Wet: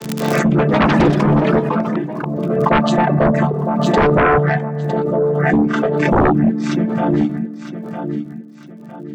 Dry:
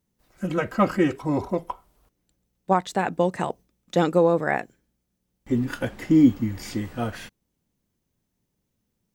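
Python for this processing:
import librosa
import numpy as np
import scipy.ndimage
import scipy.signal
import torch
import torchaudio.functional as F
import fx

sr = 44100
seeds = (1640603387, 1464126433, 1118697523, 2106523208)

y = fx.chord_vocoder(x, sr, chord='minor triad', root=50)
y = fx.low_shelf(y, sr, hz=160.0, db=-11.5)
y = fx.rev_fdn(y, sr, rt60_s=1.5, lf_ratio=1.4, hf_ratio=0.35, size_ms=15.0, drr_db=3.0)
y = fx.dereverb_blind(y, sr, rt60_s=1.0)
y = fx.high_shelf(y, sr, hz=3700.0, db=-6.5)
y = fx.echo_feedback(y, sr, ms=957, feedback_pct=35, wet_db=-12)
y = fx.fold_sine(y, sr, drive_db=15, ceiling_db=-5.0)
y = fx.dmg_crackle(y, sr, seeds[0], per_s=88.0, level_db=-44.0)
y = fx.echo_pitch(y, sr, ms=169, semitones=6, count=3, db_per_echo=-6.0, at=(0.52, 2.72))
y = fx.pre_swell(y, sr, db_per_s=25.0)
y = y * 10.0 ** (-4.0 / 20.0)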